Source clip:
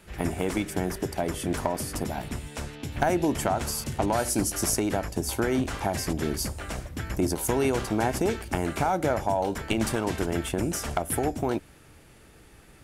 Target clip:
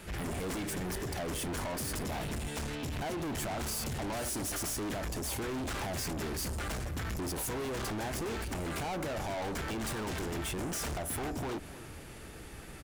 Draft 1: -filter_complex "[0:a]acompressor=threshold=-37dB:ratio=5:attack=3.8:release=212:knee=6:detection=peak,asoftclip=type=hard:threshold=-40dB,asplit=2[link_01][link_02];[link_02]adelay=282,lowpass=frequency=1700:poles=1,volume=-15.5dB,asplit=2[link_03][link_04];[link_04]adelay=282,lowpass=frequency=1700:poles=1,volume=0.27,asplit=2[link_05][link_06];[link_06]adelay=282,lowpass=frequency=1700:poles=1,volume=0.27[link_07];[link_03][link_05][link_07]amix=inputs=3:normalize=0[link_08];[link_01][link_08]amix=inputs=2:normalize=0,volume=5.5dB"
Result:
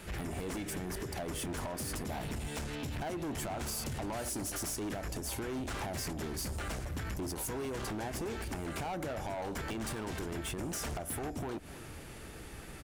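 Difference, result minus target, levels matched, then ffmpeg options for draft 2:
downward compressor: peak gain reduction +8.5 dB
-filter_complex "[0:a]acompressor=threshold=-26.5dB:ratio=5:attack=3.8:release=212:knee=6:detection=peak,asoftclip=type=hard:threshold=-40dB,asplit=2[link_01][link_02];[link_02]adelay=282,lowpass=frequency=1700:poles=1,volume=-15.5dB,asplit=2[link_03][link_04];[link_04]adelay=282,lowpass=frequency=1700:poles=1,volume=0.27,asplit=2[link_05][link_06];[link_06]adelay=282,lowpass=frequency=1700:poles=1,volume=0.27[link_07];[link_03][link_05][link_07]amix=inputs=3:normalize=0[link_08];[link_01][link_08]amix=inputs=2:normalize=0,volume=5.5dB"

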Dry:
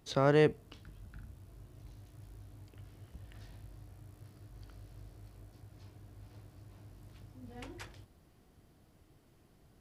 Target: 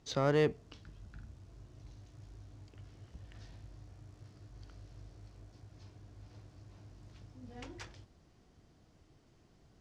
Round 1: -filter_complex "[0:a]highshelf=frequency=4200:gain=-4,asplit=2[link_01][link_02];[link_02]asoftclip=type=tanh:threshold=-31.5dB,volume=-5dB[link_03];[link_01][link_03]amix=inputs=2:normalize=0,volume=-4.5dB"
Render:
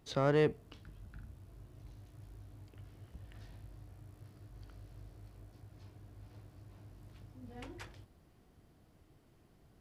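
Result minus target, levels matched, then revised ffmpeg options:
8,000 Hz band −4.5 dB
-filter_complex "[0:a]lowpass=frequency=6300:width_type=q:width=2,highshelf=frequency=4200:gain=-4,asplit=2[link_01][link_02];[link_02]asoftclip=type=tanh:threshold=-31.5dB,volume=-5dB[link_03];[link_01][link_03]amix=inputs=2:normalize=0,volume=-4.5dB"

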